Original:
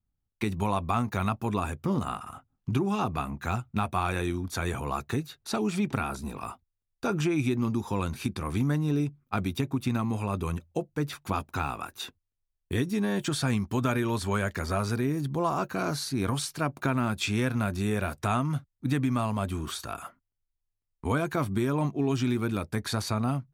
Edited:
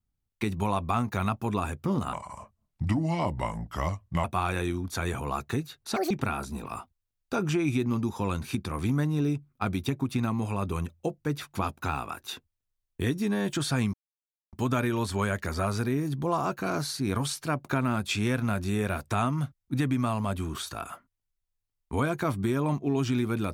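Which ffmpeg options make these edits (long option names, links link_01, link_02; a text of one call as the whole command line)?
ffmpeg -i in.wav -filter_complex "[0:a]asplit=6[link_01][link_02][link_03][link_04][link_05][link_06];[link_01]atrim=end=2.134[link_07];[link_02]atrim=start=2.13:end=3.84,asetpts=PTS-STARTPTS,asetrate=35721,aresample=44100[link_08];[link_03]atrim=start=3.836:end=5.564[link_09];[link_04]atrim=start=5.56:end=5.82,asetpts=PTS-STARTPTS,asetrate=78939,aresample=44100[link_10];[link_05]atrim=start=5.816:end=13.65,asetpts=PTS-STARTPTS,afade=type=out:start_time=7.83:duration=0.004:curve=hsin,apad=pad_dur=0.59[link_11];[link_06]atrim=start=13.65,asetpts=PTS-STARTPTS,afade=type=in:duration=0.004:curve=hsin[link_12];[link_07][link_08]acrossfade=duration=0.004:curve1=hsin:curve2=hsin[link_13];[link_13][link_09]acrossfade=duration=0.004:curve1=hsin:curve2=hsin[link_14];[link_14][link_10]acrossfade=duration=0.004:curve1=hsin:curve2=hsin[link_15];[link_11][link_12]concat=n=2:v=0:a=1[link_16];[link_15][link_16]acrossfade=duration=0.004:curve1=hsin:curve2=hsin" out.wav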